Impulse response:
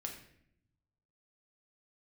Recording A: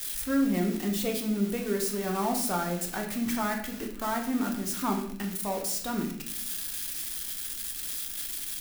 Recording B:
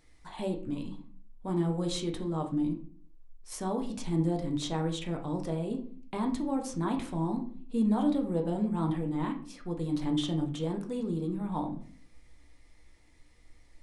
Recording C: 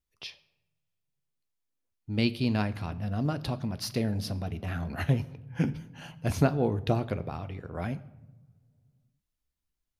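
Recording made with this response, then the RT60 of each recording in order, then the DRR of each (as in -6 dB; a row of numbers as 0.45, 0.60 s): A; 0.70 s, 0.45 s, not exponential; 1.0, 2.5, 11.0 dB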